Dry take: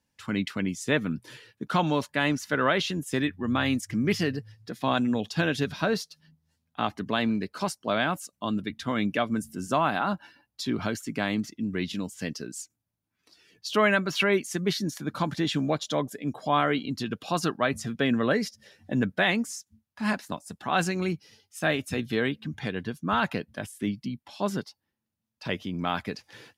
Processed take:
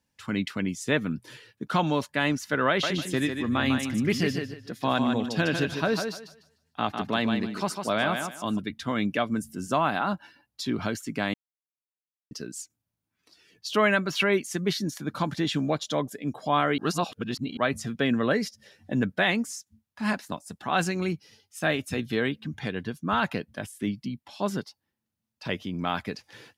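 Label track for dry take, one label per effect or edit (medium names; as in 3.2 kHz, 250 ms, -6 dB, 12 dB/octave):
2.680000	8.590000	thinning echo 150 ms, feedback 24%, high-pass 150 Hz, level -5.5 dB
11.340000	12.310000	mute
16.780000	17.570000	reverse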